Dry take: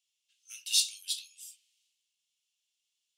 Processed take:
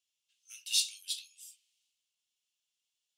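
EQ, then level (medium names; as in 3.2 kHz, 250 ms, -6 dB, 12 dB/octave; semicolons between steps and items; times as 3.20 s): dynamic bell 2.1 kHz, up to +4 dB, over -44 dBFS, Q 1.2; -3.5 dB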